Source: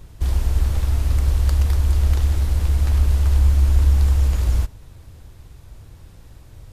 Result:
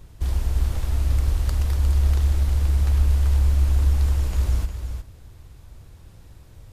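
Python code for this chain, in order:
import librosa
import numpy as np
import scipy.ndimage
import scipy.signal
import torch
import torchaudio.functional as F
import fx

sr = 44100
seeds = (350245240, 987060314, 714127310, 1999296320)

y = x + 10.0 ** (-8.0 / 20.0) * np.pad(x, (int(357 * sr / 1000.0), 0))[:len(x)]
y = y * librosa.db_to_amplitude(-3.5)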